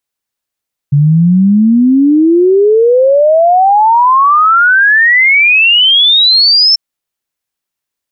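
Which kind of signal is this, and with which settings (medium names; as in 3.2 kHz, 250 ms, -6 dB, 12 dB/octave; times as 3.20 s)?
log sweep 140 Hz -> 5.4 kHz 5.84 s -4 dBFS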